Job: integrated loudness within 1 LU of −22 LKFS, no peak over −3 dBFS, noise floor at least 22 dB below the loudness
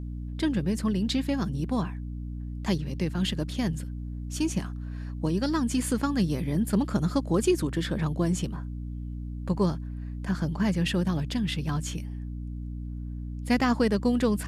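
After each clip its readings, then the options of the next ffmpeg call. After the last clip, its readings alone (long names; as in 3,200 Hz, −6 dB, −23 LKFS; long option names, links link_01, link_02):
mains hum 60 Hz; hum harmonics up to 300 Hz; level of the hum −32 dBFS; integrated loudness −29.0 LKFS; sample peak −12.0 dBFS; target loudness −22.0 LKFS
→ -af "bandreject=frequency=60:width_type=h:width=6,bandreject=frequency=120:width_type=h:width=6,bandreject=frequency=180:width_type=h:width=6,bandreject=frequency=240:width_type=h:width=6,bandreject=frequency=300:width_type=h:width=6"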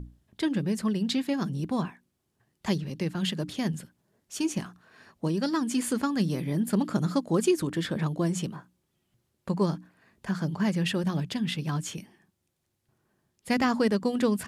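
mains hum none found; integrated loudness −29.0 LKFS; sample peak −12.5 dBFS; target loudness −22.0 LKFS
→ -af "volume=7dB"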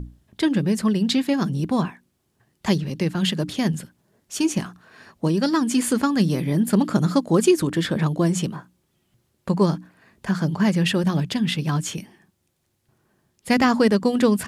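integrated loudness −22.0 LKFS; sample peak −5.5 dBFS; background noise floor −71 dBFS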